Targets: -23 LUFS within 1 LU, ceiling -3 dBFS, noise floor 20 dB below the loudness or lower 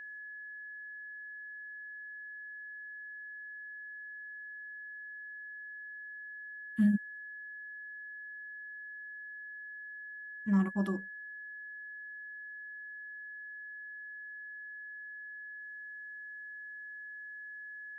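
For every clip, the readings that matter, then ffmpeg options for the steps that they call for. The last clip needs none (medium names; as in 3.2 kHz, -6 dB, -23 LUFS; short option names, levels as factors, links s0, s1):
steady tone 1.7 kHz; tone level -43 dBFS; loudness -40.5 LUFS; peak level -18.5 dBFS; loudness target -23.0 LUFS
-> -af "bandreject=f=1700:w=30"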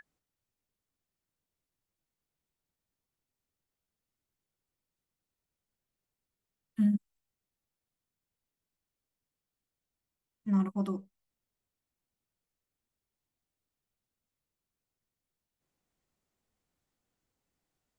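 steady tone not found; loudness -31.5 LUFS; peak level -19.0 dBFS; loudness target -23.0 LUFS
-> -af "volume=2.66"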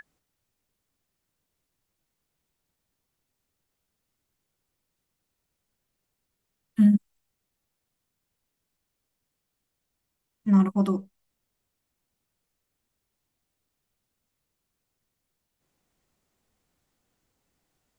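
loudness -23.0 LUFS; peak level -10.5 dBFS; noise floor -82 dBFS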